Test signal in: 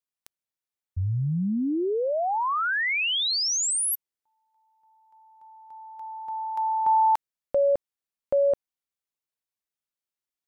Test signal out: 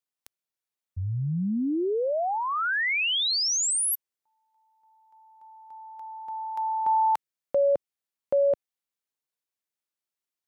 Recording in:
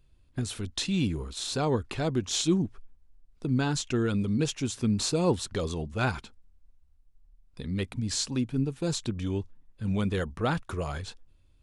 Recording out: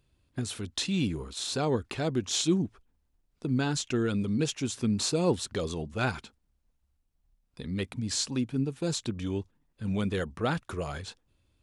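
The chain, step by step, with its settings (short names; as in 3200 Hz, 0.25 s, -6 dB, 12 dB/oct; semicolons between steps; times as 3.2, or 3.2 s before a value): dynamic EQ 1000 Hz, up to -3 dB, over -43 dBFS, Q 2.2; HPF 110 Hz 6 dB/oct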